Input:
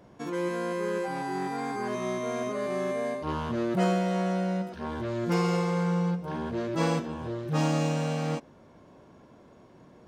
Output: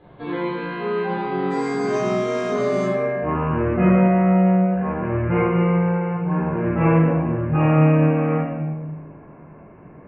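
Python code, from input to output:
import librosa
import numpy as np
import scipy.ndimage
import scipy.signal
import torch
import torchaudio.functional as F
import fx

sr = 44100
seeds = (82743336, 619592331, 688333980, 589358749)

y = fx.steep_lowpass(x, sr, hz=fx.steps((0.0, 4200.0), (1.5, 8400.0), (2.84, 2700.0)), slope=96)
y = fx.room_shoebox(y, sr, seeds[0], volume_m3=690.0, walls='mixed', distance_m=3.9)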